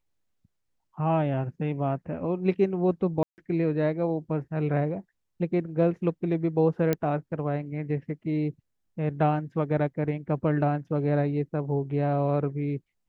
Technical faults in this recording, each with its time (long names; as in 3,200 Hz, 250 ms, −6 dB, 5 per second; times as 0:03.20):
0:03.23–0:03.38: drop-out 149 ms
0:06.93: click −12 dBFS